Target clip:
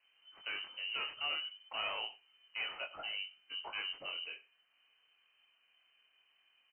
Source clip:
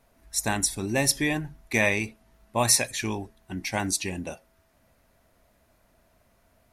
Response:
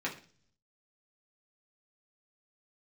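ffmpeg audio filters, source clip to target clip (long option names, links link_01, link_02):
-af "aresample=16000,asoftclip=type=tanh:threshold=-26dB,aresample=44100,flanger=delay=20:depth=7.5:speed=0.3,lowpass=frequency=2600:width_type=q:width=0.5098,lowpass=frequency=2600:width_type=q:width=0.6013,lowpass=frequency=2600:width_type=q:width=0.9,lowpass=frequency=2600:width_type=q:width=2.563,afreqshift=-3100,aecho=1:1:96:0.1,volume=-5.5dB"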